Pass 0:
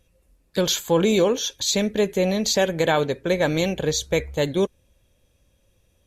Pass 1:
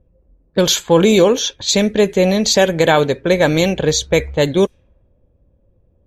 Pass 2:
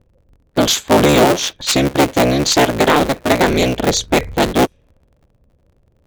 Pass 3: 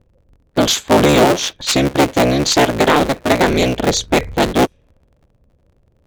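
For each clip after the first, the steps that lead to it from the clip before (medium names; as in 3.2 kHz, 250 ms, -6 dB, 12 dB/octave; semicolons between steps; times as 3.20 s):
level-controlled noise filter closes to 590 Hz, open at -17.5 dBFS; trim +7.5 dB
cycle switcher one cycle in 3, inverted
treble shelf 12 kHz -5.5 dB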